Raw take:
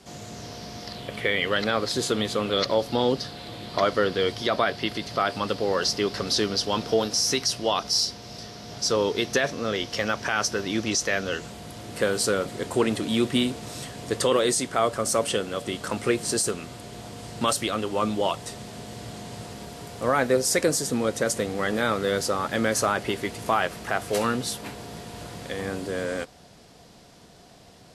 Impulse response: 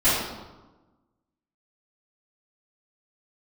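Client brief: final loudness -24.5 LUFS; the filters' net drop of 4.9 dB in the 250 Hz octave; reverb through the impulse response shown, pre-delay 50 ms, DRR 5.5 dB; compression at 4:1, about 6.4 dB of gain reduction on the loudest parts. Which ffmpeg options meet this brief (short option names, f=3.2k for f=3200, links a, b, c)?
-filter_complex "[0:a]equalizer=f=250:t=o:g=-6.5,acompressor=threshold=-26dB:ratio=4,asplit=2[a][b];[1:a]atrim=start_sample=2205,adelay=50[c];[b][c]afir=irnorm=-1:irlink=0,volume=-23dB[d];[a][d]amix=inputs=2:normalize=0,volume=5.5dB"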